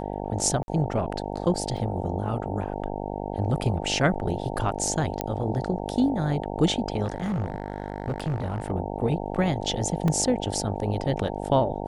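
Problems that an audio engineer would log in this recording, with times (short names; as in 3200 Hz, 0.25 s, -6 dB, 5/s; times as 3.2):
buzz 50 Hz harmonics 18 -32 dBFS
0.63–0.68 gap 51 ms
1.77 gap 2.5 ms
5.21 pop -11 dBFS
7.04–8.71 clipped -23.5 dBFS
10.08 gap 2.7 ms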